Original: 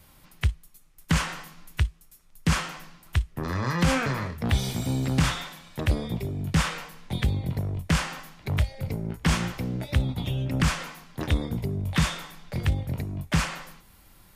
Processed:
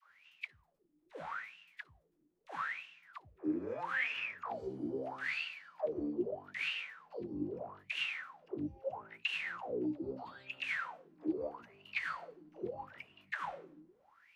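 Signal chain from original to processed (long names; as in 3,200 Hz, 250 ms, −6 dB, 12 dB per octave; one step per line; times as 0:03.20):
brickwall limiter −21.5 dBFS, peak gain reduction 10.5 dB
formants moved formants +4 semitones
all-pass dispersion lows, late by 109 ms, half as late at 420 Hz
LFO wah 0.78 Hz 300–2,800 Hz, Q 15
level +9.5 dB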